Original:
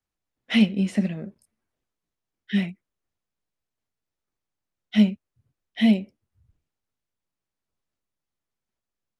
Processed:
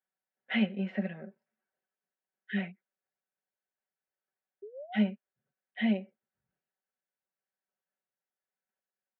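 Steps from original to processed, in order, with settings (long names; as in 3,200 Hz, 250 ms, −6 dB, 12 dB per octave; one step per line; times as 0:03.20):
loudspeaker in its box 300–2,700 Hz, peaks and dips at 330 Hz −9 dB, 490 Hz +3 dB, 750 Hz +3 dB, 1,100 Hz −6 dB, 1,600 Hz +7 dB, 2,400 Hz −3 dB
sound drawn into the spectrogram rise, 0:04.62–0:05.01, 390–880 Hz −40 dBFS
comb filter 5.3 ms, depth 68%
level −6 dB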